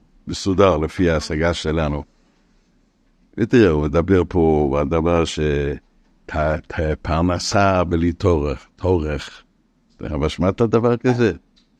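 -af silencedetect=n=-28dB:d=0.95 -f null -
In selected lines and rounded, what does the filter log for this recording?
silence_start: 2.01
silence_end: 3.38 | silence_duration: 1.36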